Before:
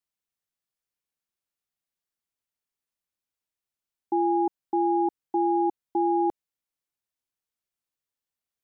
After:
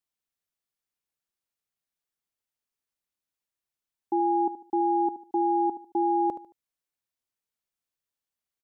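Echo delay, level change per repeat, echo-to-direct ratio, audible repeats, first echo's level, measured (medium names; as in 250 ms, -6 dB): 74 ms, -10.0 dB, -12.5 dB, 3, -13.0 dB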